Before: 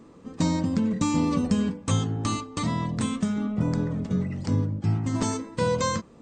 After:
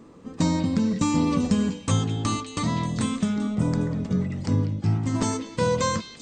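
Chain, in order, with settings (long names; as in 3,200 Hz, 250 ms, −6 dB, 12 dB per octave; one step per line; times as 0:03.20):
echo through a band-pass that steps 195 ms, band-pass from 3,000 Hz, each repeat 0.7 octaves, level −6.5 dB
level +1.5 dB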